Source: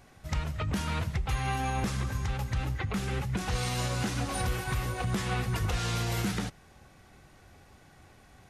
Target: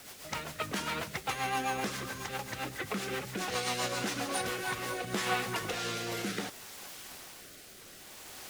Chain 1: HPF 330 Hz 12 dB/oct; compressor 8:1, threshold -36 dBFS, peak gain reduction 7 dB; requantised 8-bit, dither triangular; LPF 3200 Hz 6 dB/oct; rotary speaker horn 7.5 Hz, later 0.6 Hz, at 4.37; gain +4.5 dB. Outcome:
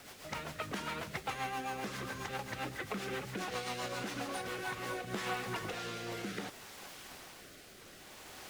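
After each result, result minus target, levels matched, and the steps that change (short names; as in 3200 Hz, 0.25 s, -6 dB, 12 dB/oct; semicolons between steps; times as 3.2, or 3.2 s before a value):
compressor: peak gain reduction +7 dB; 8000 Hz band -3.5 dB
remove: compressor 8:1, threshold -36 dBFS, peak gain reduction 7 dB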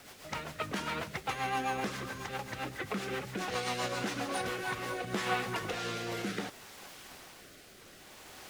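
8000 Hz band -4.5 dB
change: LPF 9200 Hz 6 dB/oct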